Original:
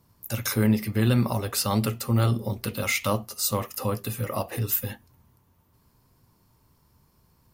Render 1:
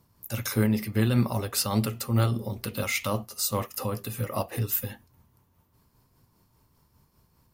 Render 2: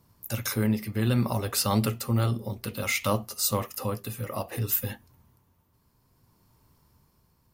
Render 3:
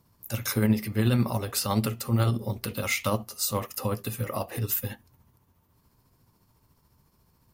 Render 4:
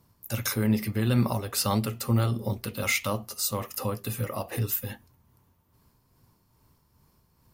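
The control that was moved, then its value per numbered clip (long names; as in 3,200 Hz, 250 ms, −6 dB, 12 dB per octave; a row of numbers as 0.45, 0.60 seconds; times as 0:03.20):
amplitude tremolo, speed: 5, 0.6, 14, 2.4 Hertz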